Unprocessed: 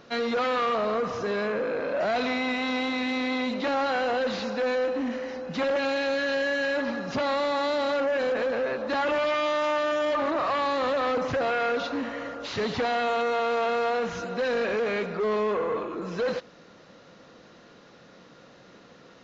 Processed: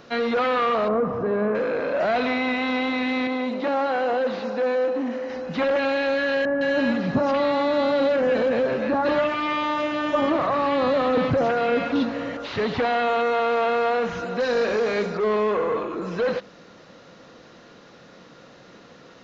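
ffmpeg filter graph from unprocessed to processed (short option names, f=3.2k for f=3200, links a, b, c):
-filter_complex "[0:a]asettb=1/sr,asplit=3[a][b][c];[a]atrim=end=0.884[d];[b]atrim=start=0.88:end=1.55,asetpts=PTS-STARTPTS,afade=t=in:d=0.004:c=qsin,afade=t=out:st=0.666:d=0.004:c=qsin,lowpass=1.2k,equalizer=f=180:w=0.78:g=5[e];[c]atrim=start=1.546[f];[d][e]acrossfade=d=0.004:c1=hsin:c2=qsin[g];[g][f]acrossfade=d=0.004:c1=qsin:c2=hsin,asettb=1/sr,asplit=3[h][i][j];[h]atrim=end=3.274[k];[i]atrim=start=3.27:end=5.3,asetpts=PTS-STARTPTS,afade=t=in:d=0.004:c=qsin,afade=t=out:st=2.026:d=0.004:c=qsin,highpass=f=560:p=1,tiltshelf=f=880:g=7[l];[j]atrim=start=5.296[m];[k][l]acrossfade=d=0.004:c1=hsin:c2=qsin[n];[n][m]acrossfade=d=0.004:c1=qsin:c2=hsin,asettb=1/sr,asplit=3[o][p][q];[o]atrim=end=6.454[r];[p]atrim=start=6.45:end=12.37,asetpts=PTS-STARTPTS,afade=t=in:d=0.004:c=qsin,afade=t=out:st=5.916:d=0.004:c=qsin,equalizer=f=160:t=o:w=1.7:g=8.5,acrossover=split=1500[s][t];[t]adelay=160[u];[s][u]amix=inputs=2:normalize=0,atrim=end_sample=261072[v];[q]atrim=start=12.366[w];[r][v]acrossfade=d=0.004:c1=hsin:c2=qsin[x];[x][w]acrossfade=d=0.004:c1=qsin:c2=hsin,asettb=1/sr,asplit=3[y][z][aa];[y]atrim=end=14.404[ab];[z]atrim=start=14.4:end=15.18,asetpts=PTS-STARTPTS,afade=t=in:d=0.004:c=qsin,afade=t=out:st=0.776:d=0.004:c=qsin,highshelf=f=3.9k:t=q:w=1.5:g=11,asplit=2[ac][ad];[ad]adelay=49,volume=-11dB[ae];[ac][ae]amix=inputs=2:normalize=0,atrim=end_sample=34398[af];[aa]atrim=start=15.176[ag];[ab][af]acrossfade=d=0.004:c1=hsin:c2=qsin[ah];[ah][ag]acrossfade=d=0.004:c1=qsin:c2=hsin,bandreject=f=200:t=h:w=4,bandreject=f=400:t=h:w=4,bandreject=f=600:t=h:w=4,acrossover=split=3900[ai][aj];[aj]acompressor=threshold=-56dB:ratio=4:attack=1:release=60[ak];[ai][ak]amix=inputs=2:normalize=0,volume=4dB"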